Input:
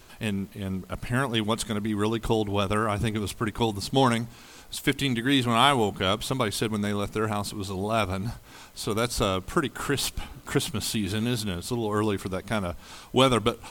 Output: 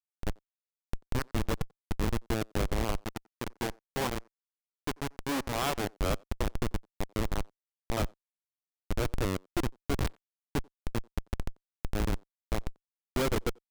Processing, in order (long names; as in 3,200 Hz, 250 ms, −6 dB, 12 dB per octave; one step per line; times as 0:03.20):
comparator with hysteresis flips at −19.5 dBFS
0:03.01–0:05.84: low-shelf EQ 210 Hz −10 dB
far-end echo of a speakerphone 90 ms, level −24 dB